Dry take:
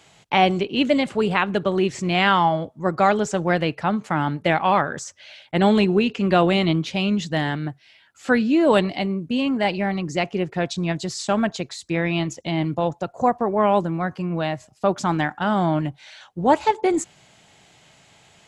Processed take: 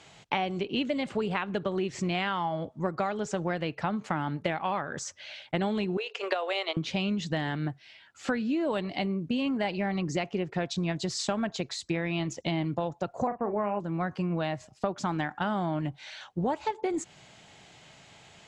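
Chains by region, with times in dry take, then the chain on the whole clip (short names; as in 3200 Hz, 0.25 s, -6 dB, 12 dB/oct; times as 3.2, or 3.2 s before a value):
5.97–6.77 steep high-pass 430 Hz 48 dB/oct + transient shaper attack +10 dB, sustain -4 dB + compressor 3:1, threshold -18 dBFS
13.27–13.8 Chebyshev low-pass 2900 Hz, order 10 + doubler 39 ms -10 dB
whole clip: LPF 7400 Hz 12 dB/oct; compressor 10:1, threshold -26 dBFS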